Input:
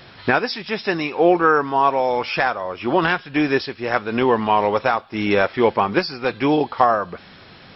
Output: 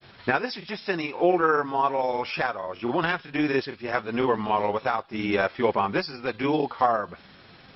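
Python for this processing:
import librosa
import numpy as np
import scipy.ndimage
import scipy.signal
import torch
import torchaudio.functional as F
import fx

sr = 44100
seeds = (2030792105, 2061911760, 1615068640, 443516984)

y = fx.granulator(x, sr, seeds[0], grain_ms=100.0, per_s=20.0, spray_ms=20.0, spread_st=0)
y = y * librosa.db_to_amplitude(-5.0)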